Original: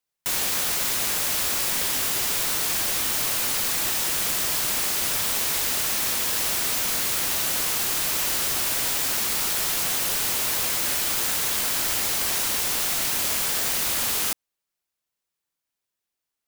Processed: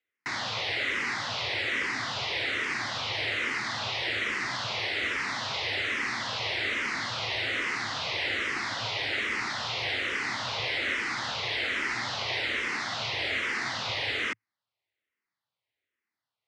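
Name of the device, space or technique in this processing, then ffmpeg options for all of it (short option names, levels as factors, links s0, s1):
barber-pole phaser into a guitar amplifier: -filter_complex "[0:a]asplit=2[s0][s1];[s1]afreqshift=-1.2[s2];[s0][s2]amix=inputs=2:normalize=1,asoftclip=type=tanh:threshold=0.0794,highpass=100,equalizer=f=110:t=q:w=4:g=9,equalizer=f=170:t=q:w=4:g=-9,equalizer=f=2000:t=q:w=4:g=9,lowpass=f=4200:w=0.5412,lowpass=f=4200:w=1.3066,volume=1.41"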